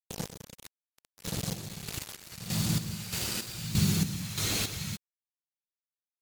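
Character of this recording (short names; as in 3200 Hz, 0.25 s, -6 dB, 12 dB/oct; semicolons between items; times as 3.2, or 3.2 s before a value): phasing stages 2, 0.82 Hz, lowest notch 150–1000 Hz; a quantiser's noise floor 6-bit, dither none; chopped level 1.6 Hz, depth 65%, duty 45%; MP3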